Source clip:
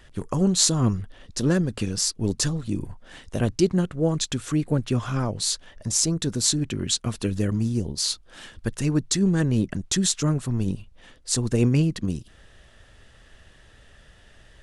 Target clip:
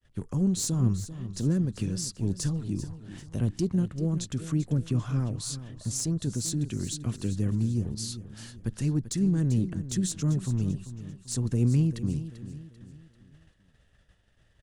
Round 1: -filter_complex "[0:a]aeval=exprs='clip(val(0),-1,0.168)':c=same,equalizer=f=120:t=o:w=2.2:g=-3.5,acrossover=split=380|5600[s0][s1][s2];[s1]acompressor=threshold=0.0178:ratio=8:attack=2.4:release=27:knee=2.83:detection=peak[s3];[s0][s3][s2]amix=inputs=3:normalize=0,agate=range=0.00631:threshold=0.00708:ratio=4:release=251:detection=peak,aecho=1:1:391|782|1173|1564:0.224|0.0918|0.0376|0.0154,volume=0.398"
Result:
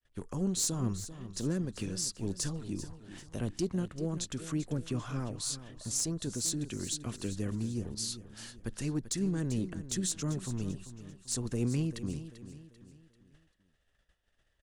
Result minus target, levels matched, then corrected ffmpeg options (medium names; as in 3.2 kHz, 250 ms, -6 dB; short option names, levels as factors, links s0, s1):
125 Hz band -3.5 dB
-filter_complex "[0:a]aeval=exprs='clip(val(0),-1,0.168)':c=same,equalizer=f=120:t=o:w=2.2:g=6.5,acrossover=split=380|5600[s0][s1][s2];[s1]acompressor=threshold=0.0178:ratio=8:attack=2.4:release=27:knee=2.83:detection=peak[s3];[s0][s3][s2]amix=inputs=3:normalize=0,agate=range=0.00631:threshold=0.00708:ratio=4:release=251:detection=peak,aecho=1:1:391|782|1173|1564:0.224|0.0918|0.0376|0.0154,volume=0.398"